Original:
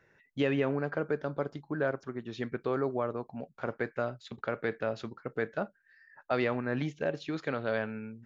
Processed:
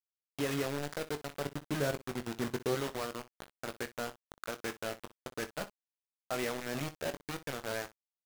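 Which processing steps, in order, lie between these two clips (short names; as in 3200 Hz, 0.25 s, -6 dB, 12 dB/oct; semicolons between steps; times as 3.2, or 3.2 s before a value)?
1.43–2.75 low shelf 440 Hz +9.5 dB; bit-crush 5-bit; early reflections 21 ms -10 dB, 61 ms -16.5 dB; gain -7 dB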